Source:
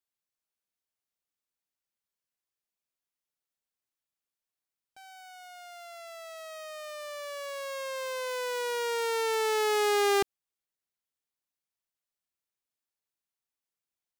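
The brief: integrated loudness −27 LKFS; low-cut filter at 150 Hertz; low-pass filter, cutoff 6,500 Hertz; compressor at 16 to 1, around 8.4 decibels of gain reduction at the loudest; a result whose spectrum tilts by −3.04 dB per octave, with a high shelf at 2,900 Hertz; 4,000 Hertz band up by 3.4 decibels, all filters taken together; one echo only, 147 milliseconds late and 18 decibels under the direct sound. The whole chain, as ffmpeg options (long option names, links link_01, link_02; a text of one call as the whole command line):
ffmpeg -i in.wav -af "highpass=150,lowpass=6500,highshelf=frequency=2900:gain=-4,equalizer=frequency=4000:width_type=o:gain=8,acompressor=threshold=-29dB:ratio=16,aecho=1:1:147:0.126,volume=9dB" out.wav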